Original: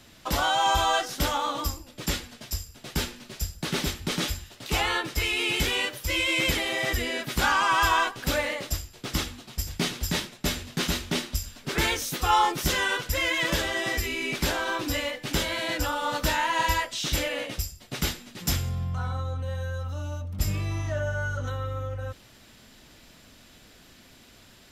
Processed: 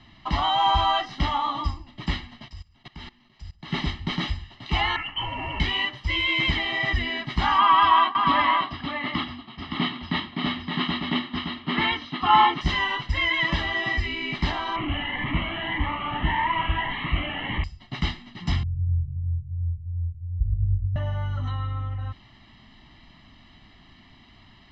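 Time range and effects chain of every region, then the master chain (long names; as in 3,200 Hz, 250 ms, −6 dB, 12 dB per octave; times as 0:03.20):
0:02.48–0:03.72: low-shelf EQ 470 Hz −2.5 dB + output level in coarse steps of 20 dB
0:04.96–0:05.60: gain into a clipping stage and back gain 29 dB + voice inversion scrambler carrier 3,100 Hz + noise that follows the level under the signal 21 dB
0:07.58–0:12.61: loudspeaker in its box 170–4,100 Hz, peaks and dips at 260 Hz +7 dB, 1,200 Hz +6 dB, 3,300 Hz +3 dB + single-tap delay 568 ms −4.5 dB
0:14.76–0:17.64: linear delta modulator 16 kbit/s, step −21.5 dBFS + phaser whose notches keep moving one way rising 1.7 Hz
0:18.63–0:20.96: inverse Chebyshev low-pass filter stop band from 630 Hz, stop band 80 dB + feedback echo with a swinging delay time 105 ms, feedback 69%, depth 117 cents, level −4.5 dB
whole clip: low-pass filter 3,800 Hz 24 dB per octave; comb filter 1 ms, depth 88%; level −1 dB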